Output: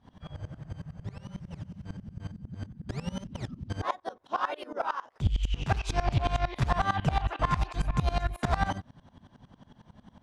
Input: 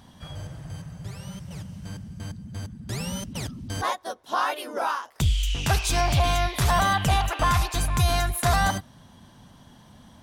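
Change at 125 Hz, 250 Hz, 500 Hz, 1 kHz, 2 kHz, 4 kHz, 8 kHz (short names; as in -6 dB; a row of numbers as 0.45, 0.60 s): -5.0, -3.5, -5.5, -6.0, -8.0, -12.0, -18.5 dB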